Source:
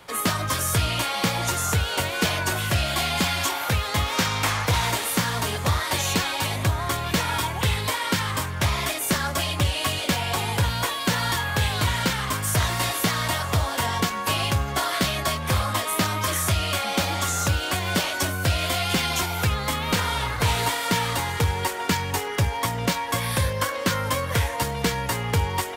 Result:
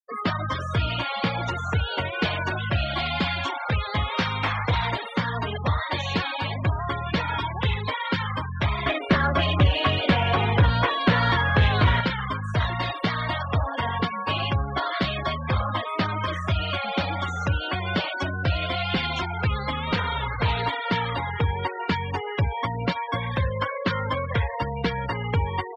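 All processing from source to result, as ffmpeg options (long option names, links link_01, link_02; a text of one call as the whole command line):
ffmpeg -i in.wav -filter_complex "[0:a]asettb=1/sr,asplit=3[link_01][link_02][link_03];[link_01]atrim=end=8.864[link_04];[link_02]atrim=start=8.86:end=12.01,asetpts=PTS-STARTPTS,afade=type=in:duration=0.004:curve=qsin,afade=type=out:start_time=3.146:duration=0.004:curve=qsin,lowpass=frequency=2500:poles=1,bandreject=frequency=880:width=12,acontrast=74[link_05];[link_03]atrim=start=12.006[link_06];[link_04][link_05]acrossfade=duration=0.004:curve1=hsin:curve2=qsin[link_07];[link_07][link_06]acrossfade=duration=0.004:curve1=qsin:curve2=hsin,afftfilt=real='re*gte(hypot(re,im),0.0631)':imag='im*gte(hypot(re,im),0.0631)':win_size=1024:overlap=0.75,lowpass=frequency=4200:width=0.5412,lowpass=frequency=4200:width=1.3066,acontrast=51,volume=-6.5dB" out.wav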